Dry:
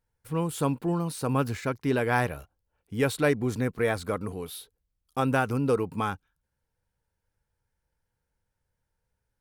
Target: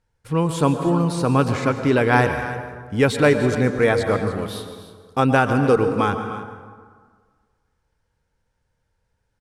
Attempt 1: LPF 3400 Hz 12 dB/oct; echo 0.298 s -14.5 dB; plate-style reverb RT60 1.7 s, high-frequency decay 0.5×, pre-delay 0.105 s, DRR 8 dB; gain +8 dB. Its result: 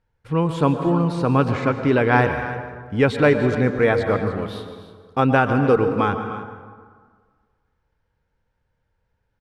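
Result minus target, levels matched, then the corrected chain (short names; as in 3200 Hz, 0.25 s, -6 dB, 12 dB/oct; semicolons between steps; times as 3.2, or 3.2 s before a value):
8000 Hz band -12.0 dB
LPF 7500 Hz 12 dB/oct; echo 0.298 s -14.5 dB; plate-style reverb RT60 1.7 s, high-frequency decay 0.5×, pre-delay 0.105 s, DRR 8 dB; gain +8 dB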